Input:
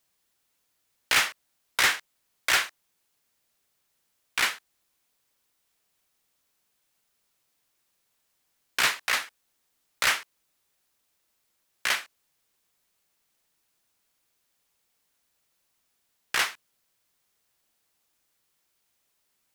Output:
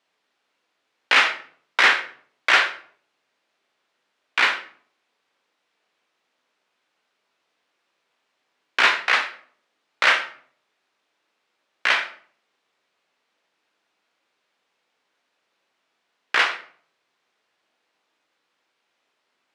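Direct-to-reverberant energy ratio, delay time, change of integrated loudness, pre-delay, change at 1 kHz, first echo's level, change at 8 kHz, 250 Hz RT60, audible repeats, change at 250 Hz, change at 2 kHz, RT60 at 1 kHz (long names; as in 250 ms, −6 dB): 5.0 dB, no echo audible, +6.5 dB, 13 ms, +8.5 dB, no echo audible, −6.5 dB, 0.70 s, no echo audible, +5.5 dB, +7.5 dB, 0.50 s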